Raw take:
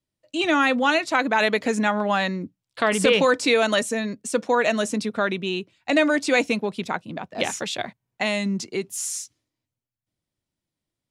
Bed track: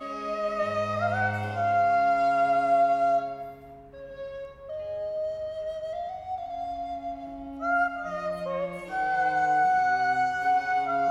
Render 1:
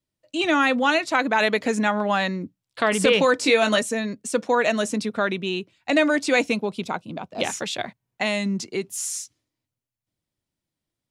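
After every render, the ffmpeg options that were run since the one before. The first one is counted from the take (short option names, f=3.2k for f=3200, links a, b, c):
-filter_complex "[0:a]asettb=1/sr,asplit=3[a][b][c];[a]atrim=end=3.374[d];[b]atrim=start=3.37:end=3.78,asetpts=PTS-STARTPTS,afade=t=in:d=0.004:c=qsin,afade=t=out:st=0.406:d=0.004:c=qsin,asplit=2[e][f];[f]adelay=19,volume=-6dB[g];[e][g]amix=inputs=2:normalize=0,atrim=end_sample=18081[h];[c]atrim=start=3.776[i];[d][h]acrossfade=d=0.004:c1=hsin:c2=qsin[j];[j][i]acrossfade=d=0.004:c1=qsin:c2=hsin,asettb=1/sr,asplit=3[k][l][m];[k]atrim=end=6.544[n];[l]atrim=start=6.54:end=7.44,asetpts=PTS-STARTPTS,afade=t=in:d=0.004:c=qsin,afade=t=out:st=0.896:d=0.004:c=qsin,equalizer=f=1.8k:t=o:w=0.35:g=-10[o];[m]atrim=start=7.436[p];[n][o]acrossfade=d=0.004:c1=hsin:c2=qsin[q];[q][p]acrossfade=d=0.004:c1=qsin:c2=hsin"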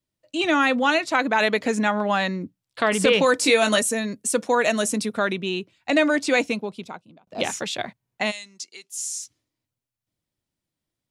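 -filter_complex "[0:a]asettb=1/sr,asplit=3[a][b][c];[a]atrim=end=3.264[d];[b]atrim=start=3.26:end=5.33,asetpts=PTS-STARTPTS,afade=t=in:d=0.004:c=qsin,afade=t=out:st=2.066:d=0.004:c=qsin,equalizer=f=11k:w=0.83:g=11[e];[c]atrim=start=5.326[f];[d][e]acrossfade=d=0.004:c1=hsin:c2=qsin[g];[g][f]acrossfade=d=0.004:c1=qsin:c2=hsin,asplit=3[h][i][j];[h]afade=t=out:st=8.3:d=0.02[k];[i]bandpass=f=6.5k:t=q:w=0.9,afade=t=in:st=8.3:d=0.02,afade=t=out:st=9.21:d=0.02[l];[j]afade=t=in:st=9.21:d=0.02[m];[k][l][m]amix=inputs=3:normalize=0,asplit=2[n][o];[n]atrim=end=7.27,asetpts=PTS-STARTPTS,afade=t=out:st=6.31:d=0.96[p];[o]atrim=start=7.27,asetpts=PTS-STARTPTS,afade=t=in:d=0.004:c=hsin[q];[p][q]concat=n=2:v=0:a=1"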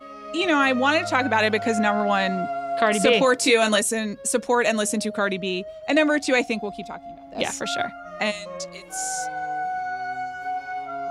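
-filter_complex "[1:a]volume=-5dB[a];[0:a][a]amix=inputs=2:normalize=0"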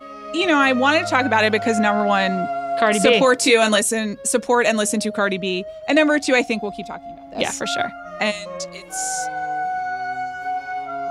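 -af "volume=3.5dB,alimiter=limit=-3dB:level=0:latency=1"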